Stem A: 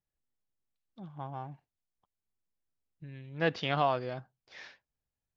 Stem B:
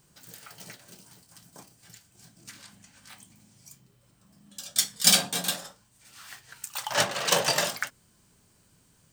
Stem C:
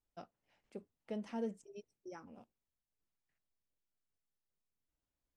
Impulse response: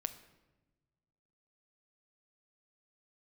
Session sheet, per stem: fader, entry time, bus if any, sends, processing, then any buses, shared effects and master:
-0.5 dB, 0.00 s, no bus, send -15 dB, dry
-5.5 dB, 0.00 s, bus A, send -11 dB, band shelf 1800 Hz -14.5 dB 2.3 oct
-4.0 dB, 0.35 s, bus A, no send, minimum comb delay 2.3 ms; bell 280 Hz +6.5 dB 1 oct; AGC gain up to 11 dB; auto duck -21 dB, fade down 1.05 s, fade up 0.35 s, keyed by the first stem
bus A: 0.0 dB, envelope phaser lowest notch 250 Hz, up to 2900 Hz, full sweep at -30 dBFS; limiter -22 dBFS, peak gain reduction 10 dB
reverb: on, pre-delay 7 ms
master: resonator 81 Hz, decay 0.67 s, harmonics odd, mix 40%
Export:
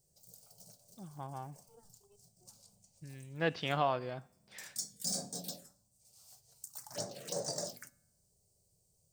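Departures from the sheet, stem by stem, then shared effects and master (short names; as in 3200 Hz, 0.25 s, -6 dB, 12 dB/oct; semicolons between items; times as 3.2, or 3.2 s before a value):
stem B: send -11 dB -> -18.5 dB; stem C -4.0 dB -> -14.5 dB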